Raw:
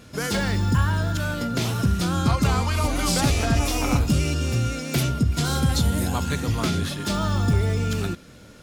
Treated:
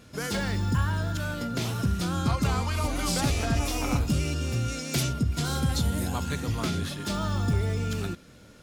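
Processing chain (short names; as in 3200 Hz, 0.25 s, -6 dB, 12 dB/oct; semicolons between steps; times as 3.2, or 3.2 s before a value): 4.68–5.13 bell 6300 Hz +6 dB 1.7 oct; gain -5 dB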